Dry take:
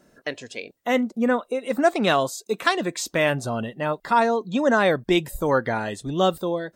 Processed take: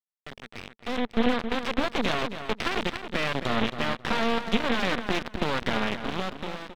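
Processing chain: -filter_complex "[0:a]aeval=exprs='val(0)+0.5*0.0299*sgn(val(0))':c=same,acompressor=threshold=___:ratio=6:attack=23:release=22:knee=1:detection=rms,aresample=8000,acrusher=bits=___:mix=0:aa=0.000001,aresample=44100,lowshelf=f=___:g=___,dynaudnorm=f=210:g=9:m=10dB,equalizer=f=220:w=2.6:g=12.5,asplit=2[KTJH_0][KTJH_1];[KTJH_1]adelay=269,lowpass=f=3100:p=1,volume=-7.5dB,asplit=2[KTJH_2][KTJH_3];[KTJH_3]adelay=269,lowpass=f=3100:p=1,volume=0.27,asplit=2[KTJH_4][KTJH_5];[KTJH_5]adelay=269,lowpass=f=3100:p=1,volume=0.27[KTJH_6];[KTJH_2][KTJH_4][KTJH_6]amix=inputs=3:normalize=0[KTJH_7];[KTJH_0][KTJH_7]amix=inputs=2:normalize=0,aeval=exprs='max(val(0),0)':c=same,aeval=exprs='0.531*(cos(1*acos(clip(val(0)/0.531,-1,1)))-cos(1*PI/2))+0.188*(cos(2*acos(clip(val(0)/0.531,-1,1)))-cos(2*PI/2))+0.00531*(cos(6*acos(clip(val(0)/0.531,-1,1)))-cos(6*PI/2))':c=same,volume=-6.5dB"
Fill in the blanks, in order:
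-33dB, 4, 310, -7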